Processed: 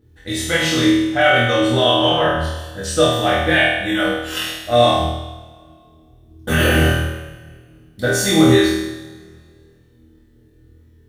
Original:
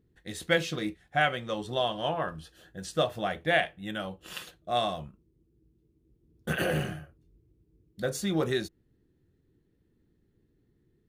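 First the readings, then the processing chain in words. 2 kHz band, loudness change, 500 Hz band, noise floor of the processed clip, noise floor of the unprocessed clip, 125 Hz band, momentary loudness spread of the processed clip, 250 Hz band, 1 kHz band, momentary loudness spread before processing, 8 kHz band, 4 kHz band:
+14.0 dB, +14.0 dB, +14.0 dB, -51 dBFS, -70 dBFS, +15.5 dB, 13 LU, +17.5 dB, +12.5 dB, 15 LU, +17.5 dB, +16.5 dB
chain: peak limiter -19.5 dBFS, peak gain reduction 8.5 dB; on a send: flutter echo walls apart 4.3 m, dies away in 0.92 s; on the sum: two-slope reverb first 0.24 s, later 2 s, from -22 dB, DRR -1.5 dB; trim +8 dB

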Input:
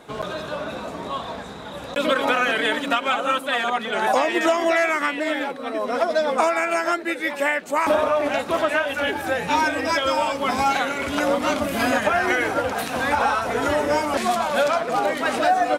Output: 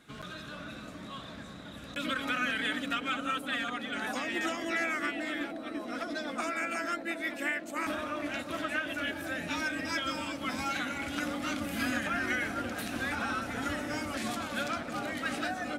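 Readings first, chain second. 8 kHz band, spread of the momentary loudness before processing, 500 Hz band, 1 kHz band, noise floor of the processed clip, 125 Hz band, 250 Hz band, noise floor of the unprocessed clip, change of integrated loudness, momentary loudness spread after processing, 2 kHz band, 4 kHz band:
-9.0 dB, 10 LU, -18.0 dB, -15.5 dB, -45 dBFS, -7.0 dB, -8.0 dB, -34 dBFS, -11.5 dB, 11 LU, -9.0 dB, -9.0 dB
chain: high-order bell 630 Hz -11.5 dB; band-stop 950 Hz, Q 28; bucket-brigade echo 357 ms, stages 2048, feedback 85%, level -6 dB; trim -9 dB

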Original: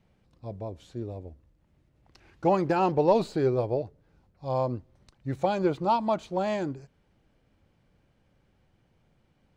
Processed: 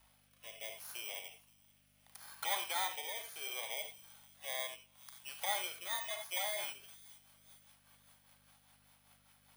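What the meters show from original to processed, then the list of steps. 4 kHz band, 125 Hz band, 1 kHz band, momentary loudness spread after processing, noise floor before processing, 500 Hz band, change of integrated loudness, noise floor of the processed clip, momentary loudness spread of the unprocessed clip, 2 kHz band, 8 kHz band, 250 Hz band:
+6.0 dB, -36.0 dB, -14.5 dB, 19 LU, -69 dBFS, -22.0 dB, -11.5 dB, -70 dBFS, 17 LU, +0.5 dB, no reading, -37.0 dB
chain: bit-reversed sample order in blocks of 16 samples; in parallel at +3 dB: peak limiter -19 dBFS, peak gain reduction 8.5 dB; on the sum: compression 6:1, threshold -32 dBFS, peak gain reduction 18 dB; high-pass 880 Hz 24 dB/octave; harmonic-percussive split harmonic +7 dB; hum 50 Hz, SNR 29 dB; on a send: feedback echo behind a high-pass 522 ms, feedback 47%, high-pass 4.4 kHz, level -18 dB; on the sum: gated-style reverb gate 100 ms rising, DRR 7 dB; rotary cabinet horn 0.7 Hz, later 5 Hz, at 5.97 s

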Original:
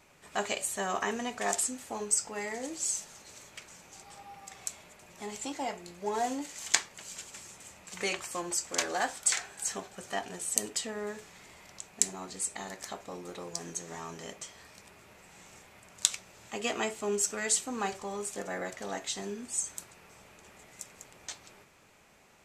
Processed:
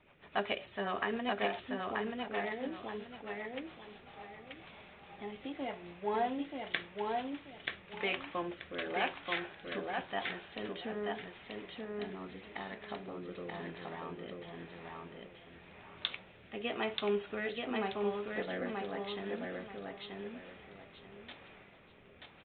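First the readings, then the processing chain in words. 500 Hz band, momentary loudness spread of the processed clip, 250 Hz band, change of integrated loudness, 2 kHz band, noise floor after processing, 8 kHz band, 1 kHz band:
0.0 dB, 17 LU, +0.5 dB, -5.5 dB, -1.0 dB, -58 dBFS, under -40 dB, -2.0 dB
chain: rotary cabinet horn 7.5 Hz, later 0.9 Hz, at 3.49 s; feedback delay 932 ms, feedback 27%, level -3 dB; resampled via 8 kHz

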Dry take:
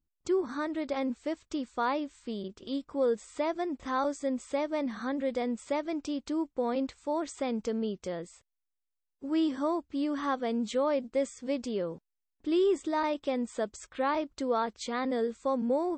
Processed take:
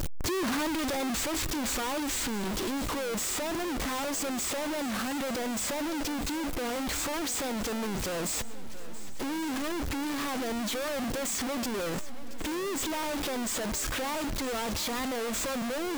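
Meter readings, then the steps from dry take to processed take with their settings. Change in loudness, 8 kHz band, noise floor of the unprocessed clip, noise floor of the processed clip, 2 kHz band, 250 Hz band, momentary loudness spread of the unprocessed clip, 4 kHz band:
+0.5 dB, +16.5 dB, -84 dBFS, -32 dBFS, +6.5 dB, -1.0 dB, 8 LU, +10.0 dB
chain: one-bit comparator; shuffle delay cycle 1130 ms, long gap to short 1.5:1, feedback 46%, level -16 dB; peak limiter -35.5 dBFS, peak gain reduction 7 dB; trim +6.5 dB

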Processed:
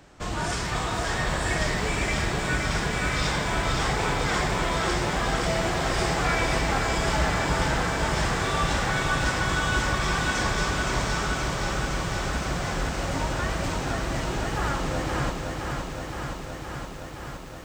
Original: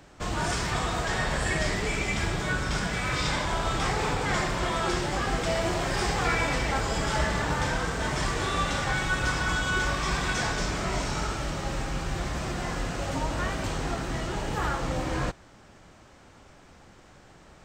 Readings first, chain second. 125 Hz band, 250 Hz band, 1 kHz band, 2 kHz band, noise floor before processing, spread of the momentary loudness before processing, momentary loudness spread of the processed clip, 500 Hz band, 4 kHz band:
+2.5 dB, +2.5 dB, +2.5 dB, +2.5 dB, -53 dBFS, 5 LU, 8 LU, +2.5 dB, +2.5 dB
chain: bit-crushed delay 518 ms, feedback 80%, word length 9-bit, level -5 dB

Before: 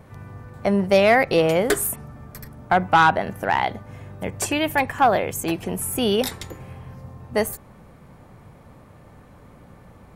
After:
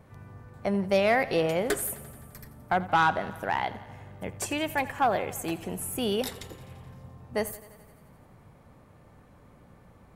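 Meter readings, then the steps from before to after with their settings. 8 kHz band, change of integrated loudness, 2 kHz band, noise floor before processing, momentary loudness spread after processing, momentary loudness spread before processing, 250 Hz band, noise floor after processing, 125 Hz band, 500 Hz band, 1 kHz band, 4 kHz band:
-7.5 dB, -7.5 dB, -7.5 dB, -49 dBFS, 23 LU, 24 LU, -7.5 dB, -56 dBFS, -7.5 dB, -7.5 dB, -7.5 dB, -7.5 dB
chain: thinning echo 86 ms, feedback 70%, high-pass 170 Hz, level -17.5 dB; trim -7.5 dB

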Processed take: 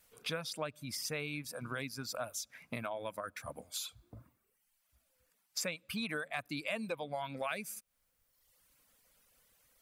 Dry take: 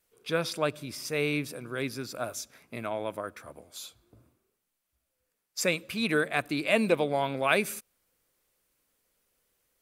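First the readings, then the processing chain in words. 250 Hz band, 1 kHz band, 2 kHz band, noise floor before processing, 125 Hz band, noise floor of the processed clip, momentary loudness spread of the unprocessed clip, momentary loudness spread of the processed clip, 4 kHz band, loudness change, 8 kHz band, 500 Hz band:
-11.0 dB, -9.0 dB, -10.0 dB, -82 dBFS, -8.5 dB, -79 dBFS, 15 LU, 7 LU, -5.5 dB, -10.0 dB, -3.5 dB, -12.0 dB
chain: reverb removal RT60 0.96 s; peaking EQ 370 Hz -12 dB 0.48 oct; compression 5:1, threshold -45 dBFS, peak gain reduction 22 dB; trim +7.5 dB

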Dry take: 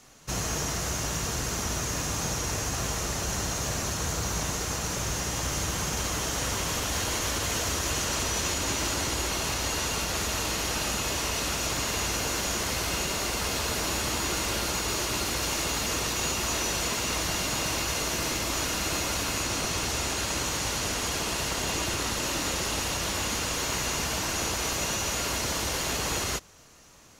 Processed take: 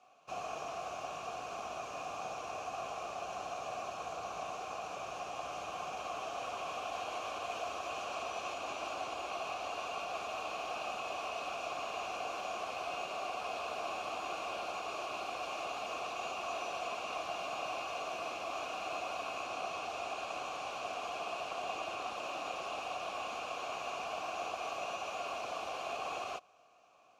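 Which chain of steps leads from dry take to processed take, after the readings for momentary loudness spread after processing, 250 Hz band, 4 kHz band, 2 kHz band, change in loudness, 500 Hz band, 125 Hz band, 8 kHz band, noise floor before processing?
3 LU, -19.0 dB, -16.0 dB, -11.0 dB, -12.0 dB, -6.0 dB, -27.5 dB, -24.5 dB, -31 dBFS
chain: vowel filter a; trim +3.5 dB

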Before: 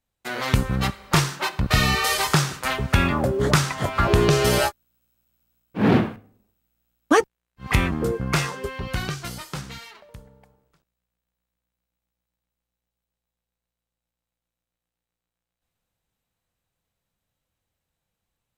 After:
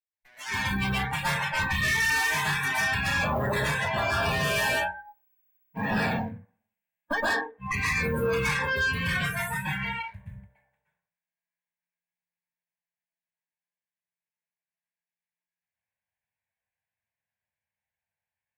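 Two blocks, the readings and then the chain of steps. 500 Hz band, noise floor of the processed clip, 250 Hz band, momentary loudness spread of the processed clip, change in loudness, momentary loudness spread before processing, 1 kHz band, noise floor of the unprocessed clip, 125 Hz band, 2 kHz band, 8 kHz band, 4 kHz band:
-7.5 dB, under -85 dBFS, -9.0 dB, 9 LU, -4.5 dB, 14 LU, -3.5 dB, under -85 dBFS, -8.5 dB, +2.5 dB, -6.5 dB, -5.0 dB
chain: modulation noise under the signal 23 dB; static phaser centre 1.3 kHz, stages 6; dynamic bell 3.7 kHz, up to +5 dB, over -45 dBFS, Q 1.7; high-pass 71 Hz 12 dB/octave; peaking EQ 1.7 kHz +14 dB 1.5 oct; compression 4:1, threshold -26 dBFS, peak gain reduction 15 dB; flange 0.29 Hz, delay 9.5 ms, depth 1.9 ms, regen +64%; plate-style reverb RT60 0.57 s, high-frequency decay 0.5×, pre-delay 110 ms, DRR -5.5 dB; valve stage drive 31 dB, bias 0.5; spectral noise reduction 22 dB; level rider gain up to 9 dB; hum notches 60/120/180/240/300/360/420/480/540 Hz

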